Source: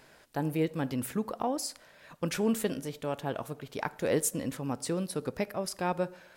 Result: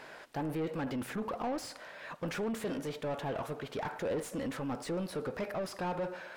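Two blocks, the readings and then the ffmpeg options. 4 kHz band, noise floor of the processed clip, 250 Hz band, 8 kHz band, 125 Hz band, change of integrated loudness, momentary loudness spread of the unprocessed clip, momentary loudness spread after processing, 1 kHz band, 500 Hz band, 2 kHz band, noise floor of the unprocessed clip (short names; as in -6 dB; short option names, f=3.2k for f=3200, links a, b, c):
-4.5 dB, -51 dBFS, -4.5 dB, -12.5 dB, -5.0 dB, -4.5 dB, 8 LU, 4 LU, -2.5 dB, -3.5 dB, -1.5 dB, -59 dBFS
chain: -filter_complex "[0:a]asoftclip=type=tanh:threshold=-29dB,asplit=2[a][b];[b]highpass=f=720:p=1,volume=19dB,asoftclip=type=tanh:threshold=-29dB[c];[a][c]amix=inputs=2:normalize=0,lowpass=f=1.6k:p=1,volume=-6dB"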